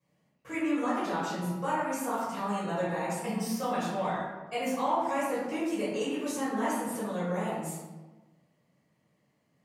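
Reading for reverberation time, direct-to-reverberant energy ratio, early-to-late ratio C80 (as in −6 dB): 1.2 s, −12.5 dB, 2.0 dB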